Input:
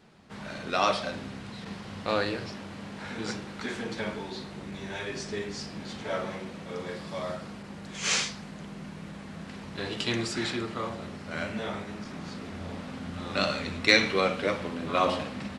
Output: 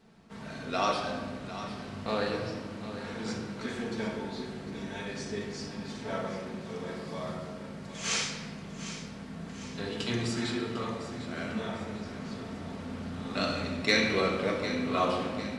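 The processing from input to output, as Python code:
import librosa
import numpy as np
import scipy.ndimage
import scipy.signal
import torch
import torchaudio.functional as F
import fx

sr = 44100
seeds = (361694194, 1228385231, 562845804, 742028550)

p1 = fx.peak_eq(x, sr, hz=2400.0, db=-3.0, octaves=1.9)
p2 = p1 + fx.echo_feedback(p1, sr, ms=751, feedback_pct=46, wet_db=-12.0, dry=0)
p3 = fx.room_shoebox(p2, sr, seeds[0], volume_m3=1400.0, walls='mixed', distance_m=1.6)
y = p3 * 10.0 ** (-4.0 / 20.0)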